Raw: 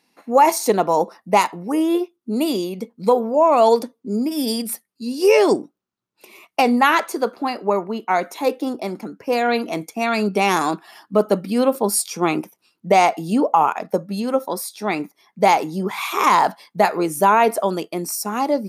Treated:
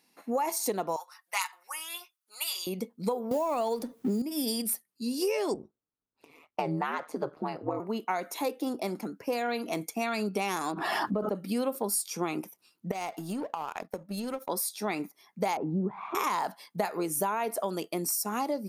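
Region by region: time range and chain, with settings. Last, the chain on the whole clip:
0.96–2.67 s: high-pass 1.1 kHz 24 dB/octave + comb 5.5 ms, depth 56%
3.31–4.22 s: companding laws mixed up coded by mu + bass shelf 220 Hz +7 dB + three bands compressed up and down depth 100%
5.54–7.80 s: low-pass 1.3 kHz 6 dB/octave + ring modulator 78 Hz
10.72–11.35 s: low-pass 1 kHz 6 dB/octave + swell ahead of each attack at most 35 dB/s
12.91–14.49 s: compression 12:1, threshold -21 dBFS + power-law waveshaper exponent 1.4
15.57–16.15 s: low-pass 1.1 kHz + tilt EQ -3.5 dB/octave
whole clip: treble shelf 7.4 kHz +8.5 dB; compression 6:1, threshold -22 dBFS; trim -5 dB

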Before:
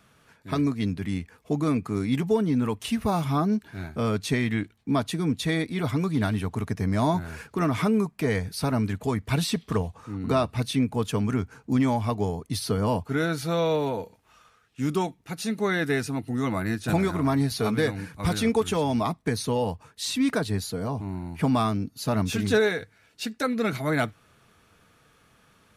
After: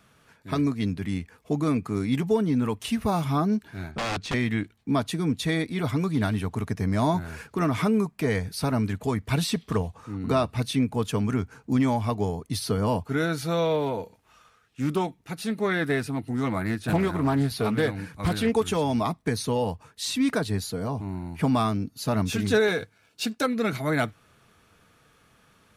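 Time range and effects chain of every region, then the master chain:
3.91–4.34 s: integer overflow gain 22 dB + distance through air 87 m
13.65–18.52 s: dynamic bell 6.4 kHz, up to -7 dB, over -52 dBFS, Q 1.8 + loudspeaker Doppler distortion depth 0.23 ms
22.68–23.46 s: band-stop 1.9 kHz, Q 5.6 + waveshaping leveller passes 1 + high-pass 71 Hz
whole clip: none

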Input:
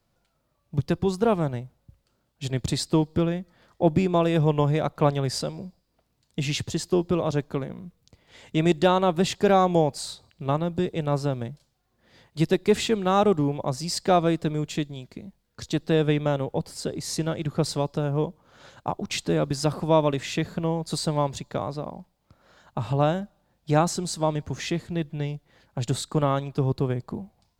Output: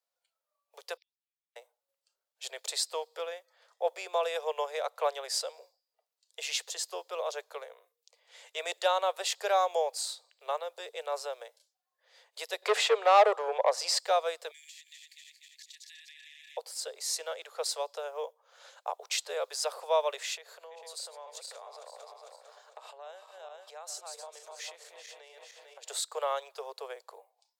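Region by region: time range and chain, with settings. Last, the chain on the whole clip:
0.97–1.56 s: elliptic band-pass 2.2–5.5 kHz + compression, threshold -45 dBFS + inverted gate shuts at -45 dBFS, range -41 dB
12.62–13.99 s: tilt shelf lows +6 dB, about 1.3 kHz + overdrive pedal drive 18 dB, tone 2.6 kHz, clips at -3.5 dBFS + tape noise reduction on one side only encoder only
14.51–16.57 s: backward echo that repeats 122 ms, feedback 65%, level -2 dB + Chebyshev high-pass 1.7 kHz, order 10 + compression 10:1, threshold -45 dBFS
20.34–25.90 s: backward echo that repeats 225 ms, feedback 56%, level -8 dB + compression, threshold -34 dBFS
whole clip: spectral noise reduction 11 dB; steep high-pass 460 Hz 72 dB/octave; treble shelf 4.1 kHz +8 dB; trim -6 dB

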